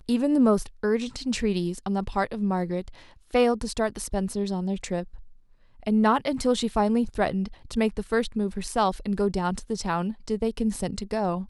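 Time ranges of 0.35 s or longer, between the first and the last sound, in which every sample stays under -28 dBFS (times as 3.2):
2.88–3.35
5.03–5.87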